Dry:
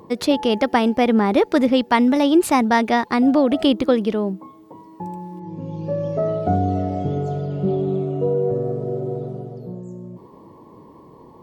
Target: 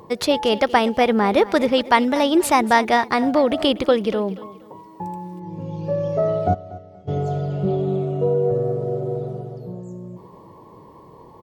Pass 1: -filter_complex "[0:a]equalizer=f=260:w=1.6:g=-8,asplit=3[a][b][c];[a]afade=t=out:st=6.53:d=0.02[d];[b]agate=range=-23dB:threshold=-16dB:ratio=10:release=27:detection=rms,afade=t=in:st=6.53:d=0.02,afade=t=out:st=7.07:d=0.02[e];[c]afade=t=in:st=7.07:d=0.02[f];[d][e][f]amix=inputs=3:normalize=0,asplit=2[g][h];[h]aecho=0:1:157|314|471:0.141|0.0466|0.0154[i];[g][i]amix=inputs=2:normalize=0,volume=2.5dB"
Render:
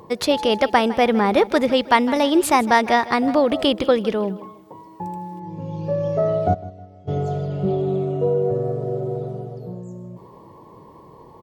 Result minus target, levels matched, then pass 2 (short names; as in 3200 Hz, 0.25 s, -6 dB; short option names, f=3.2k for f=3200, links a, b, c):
echo 82 ms early
-filter_complex "[0:a]equalizer=f=260:w=1.6:g=-8,asplit=3[a][b][c];[a]afade=t=out:st=6.53:d=0.02[d];[b]agate=range=-23dB:threshold=-16dB:ratio=10:release=27:detection=rms,afade=t=in:st=6.53:d=0.02,afade=t=out:st=7.07:d=0.02[e];[c]afade=t=in:st=7.07:d=0.02[f];[d][e][f]amix=inputs=3:normalize=0,asplit=2[g][h];[h]aecho=0:1:239|478|717:0.141|0.0466|0.0154[i];[g][i]amix=inputs=2:normalize=0,volume=2.5dB"